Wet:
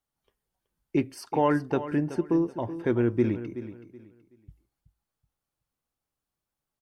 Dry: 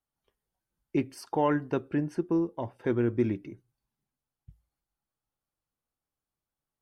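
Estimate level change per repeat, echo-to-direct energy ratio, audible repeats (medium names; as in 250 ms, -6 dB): -11.5 dB, -12.5 dB, 2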